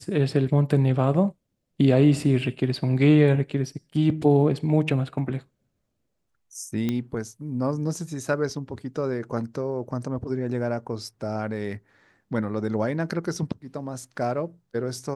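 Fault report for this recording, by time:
6.89 pop -14 dBFS

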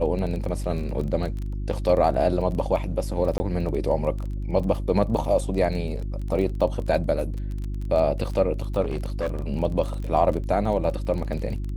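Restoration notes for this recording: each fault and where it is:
crackle 22/s -30 dBFS
hum 50 Hz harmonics 7 -29 dBFS
3.38–3.4 gap 20 ms
8.81–9.48 clipped -22 dBFS

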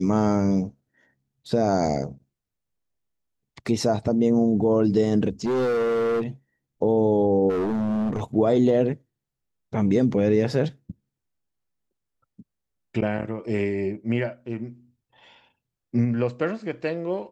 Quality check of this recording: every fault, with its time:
5.45–6.23 clipped -20.5 dBFS
7.49–8.21 clipped -22 dBFS

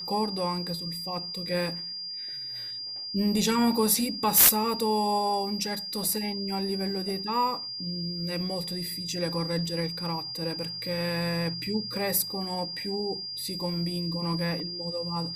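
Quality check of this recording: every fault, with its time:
tone 4800 Hz -34 dBFS

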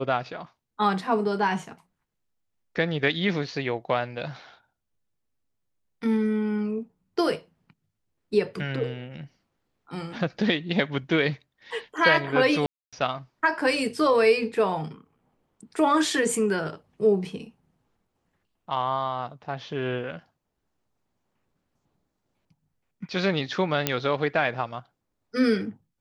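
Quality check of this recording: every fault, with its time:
12.66–12.93 gap 0.266 s
23.87 pop -5 dBFS

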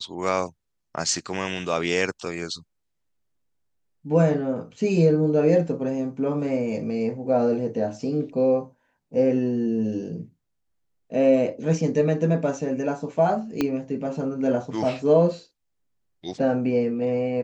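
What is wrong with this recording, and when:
13.61 pop -10 dBFS

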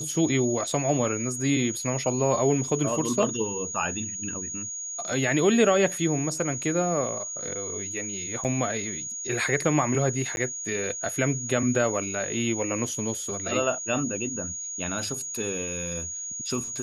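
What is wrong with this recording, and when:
tone 6700 Hz -32 dBFS
8.44–8.45 gap 7 ms
10.36–10.37 gap 11 ms

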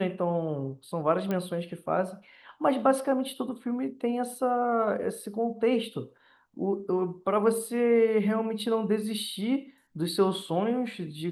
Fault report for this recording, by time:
1.31 pop -18 dBFS

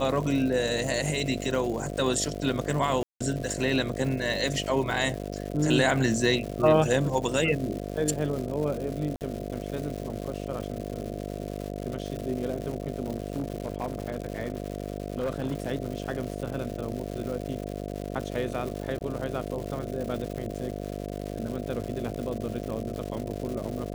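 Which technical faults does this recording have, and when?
buzz 50 Hz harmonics 14 -35 dBFS
crackle 280/s -34 dBFS
3.03–3.21 gap 0.175 s
9.16–9.21 gap 48 ms
13.16–15.71 clipped -24 dBFS
18.99–19.01 gap 18 ms

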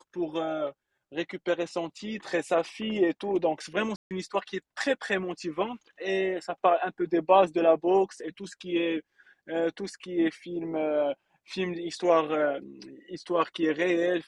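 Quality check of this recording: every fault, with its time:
3.96–4.11 gap 0.148 s

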